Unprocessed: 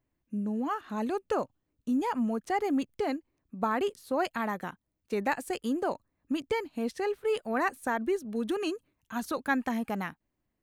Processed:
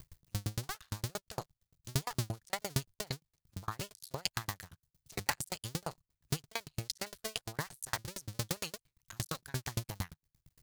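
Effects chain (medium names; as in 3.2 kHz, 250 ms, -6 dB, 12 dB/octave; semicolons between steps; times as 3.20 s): cycle switcher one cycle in 2, muted; FFT filter 150 Hz 0 dB, 230 Hz -21 dB, 2.6 kHz -7 dB, 4.6 kHz +3 dB; upward compressor, threshold -45 dBFS; sawtooth tremolo in dB decaying 8.7 Hz, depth 39 dB; trim +13 dB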